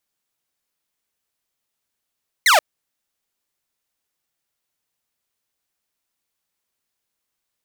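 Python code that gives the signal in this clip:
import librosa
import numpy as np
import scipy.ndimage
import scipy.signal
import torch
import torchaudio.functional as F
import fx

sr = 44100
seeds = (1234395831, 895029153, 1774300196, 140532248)

y = fx.laser_zap(sr, level_db=-8, start_hz=2200.0, end_hz=560.0, length_s=0.13, wave='saw')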